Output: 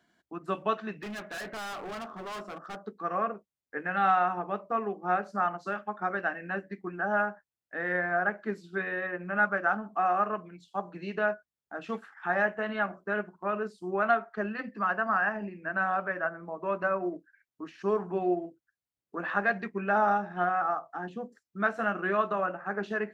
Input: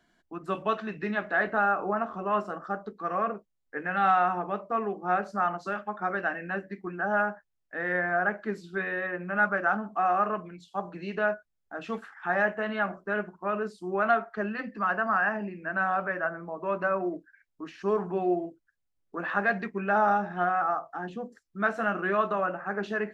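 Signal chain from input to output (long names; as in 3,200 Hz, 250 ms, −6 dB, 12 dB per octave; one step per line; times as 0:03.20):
high-pass filter 75 Hz
transient designer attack +1 dB, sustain −3 dB
0:00.97–0:02.79: gain into a clipping stage and back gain 35 dB
level −1.5 dB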